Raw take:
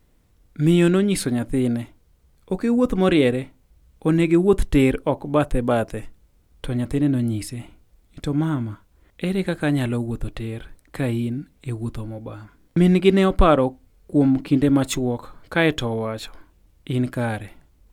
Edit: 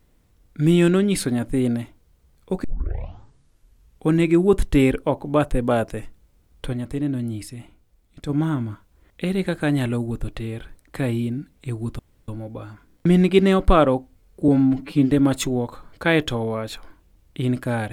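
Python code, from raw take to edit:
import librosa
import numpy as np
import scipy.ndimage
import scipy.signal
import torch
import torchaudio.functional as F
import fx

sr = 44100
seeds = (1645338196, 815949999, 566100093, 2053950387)

y = fx.edit(x, sr, fx.tape_start(start_s=2.64, length_s=1.45),
    fx.clip_gain(start_s=6.73, length_s=1.56, db=-4.5),
    fx.insert_room_tone(at_s=11.99, length_s=0.29),
    fx.stretch_span(start_s=14.19, length_s=0.41, factor=1.5), tone=tone)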